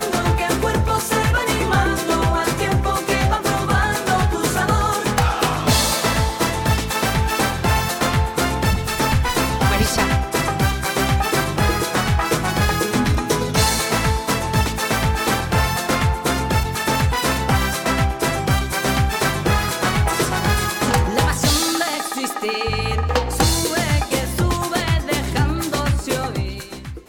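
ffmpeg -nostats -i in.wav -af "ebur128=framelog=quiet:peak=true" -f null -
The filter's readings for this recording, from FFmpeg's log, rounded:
Integrated loudness:
  I:         -19.2 LUFS
  Threshold: -29.2 LUFS
Loudness range:
  LRA:         1.3 LU
  Threshold: -39.1 LUFS
  LRA low:   -19.8 LUFS
  LRA high:  -18.5 LUFS
True peak:
  Peak:       -7.3 dBFS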